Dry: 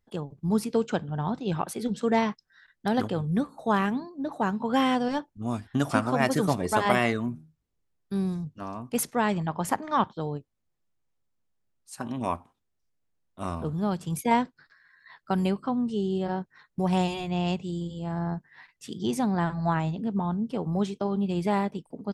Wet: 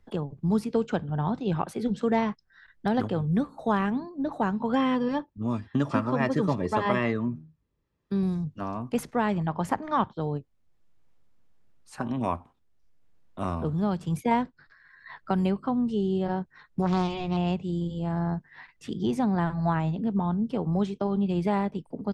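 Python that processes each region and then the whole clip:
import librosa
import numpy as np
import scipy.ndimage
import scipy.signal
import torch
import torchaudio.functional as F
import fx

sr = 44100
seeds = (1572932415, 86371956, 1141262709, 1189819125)

y = fx.chain(x, sr, fx.lowpass(hz=6400.0, slope=12),
    fx.notch_comb(f0_hz=740.0), at=(4.75, 8.23))
y = fx.chain(y, sr, fx.lowpass(hz=6400.0, slope=24),
    fx.high_shelf(hz=4500.0, db=6.5),
    fx.doppler_dist(depth_ms=0.35), at=(16.82, 17.37))
y = fx.lowpass(y, sr, hz=2800.0, slope=6)
y = fx.low_shelf(y, sr, hz=60.0, db=10.5)
y = fx.band_squash(y, sr, depth_pct=40)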